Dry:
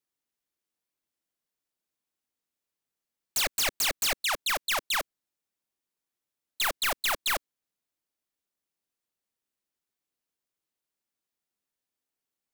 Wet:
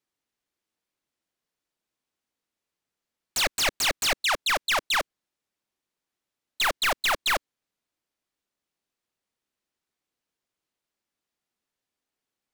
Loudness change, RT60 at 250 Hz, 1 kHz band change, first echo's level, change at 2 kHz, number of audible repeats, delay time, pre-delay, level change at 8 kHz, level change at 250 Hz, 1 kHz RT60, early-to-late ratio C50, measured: +3.0 dB, none, +5.0 dB, none, +4.5 dB, none, none, none, +0.5 dB, +5.0 dB, none, none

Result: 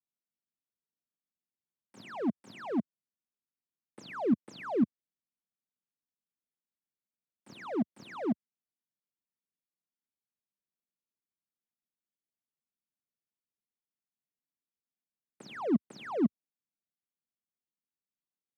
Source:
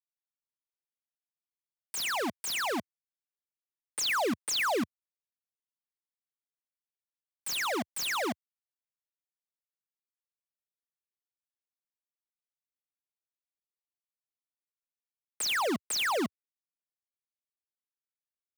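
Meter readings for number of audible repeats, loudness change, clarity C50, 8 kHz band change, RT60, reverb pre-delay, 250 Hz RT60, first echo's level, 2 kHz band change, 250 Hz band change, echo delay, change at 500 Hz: none, -3.0 dB, none, under -25 dB, none, none, none, none, -15.5 dB, +5.5 dB, none, -2.0 dB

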